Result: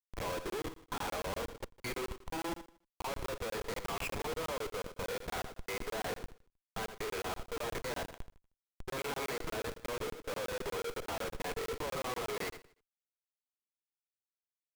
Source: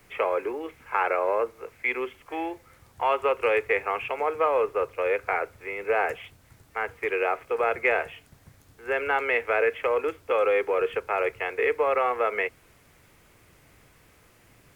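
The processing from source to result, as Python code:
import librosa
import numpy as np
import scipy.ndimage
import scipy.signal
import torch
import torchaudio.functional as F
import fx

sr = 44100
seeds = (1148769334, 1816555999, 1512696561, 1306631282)

p1 = fx.tracing_dist(x, sr, depth_ms=0.19)
p2 = scipy.signal.sosfilt(scipy.signal.butter(2, 150.0, 'highpass', fs=sr, output='sos'), p1)
p3 = fx.level_steps(p2, sr, step_db=18)
p4 = fx.granulator(p3, sr, seeds[0], grain_ms=100.0, per_s=20.0, spray_ms=20.0, spread_st=0)
p5 = fx.schmitt(p4, sr, flips_db=-45.5)
p6 = fx.small_body(p5, sr, hz=(1000.0, 3300.0), ring_ms=45, db=6)
p7 = p6 + fx.echo_feedback(p6, sr, ms=78, feedback_pct=33, wet_db=-10.5, dry=0)
p8 = fx.buffer_crackle(p7, sr, first_s=0.5, period_s=0.12, block=1024, kind='zero')
y = F.gain(torch.from_numpy(p8), 3.0).numpy()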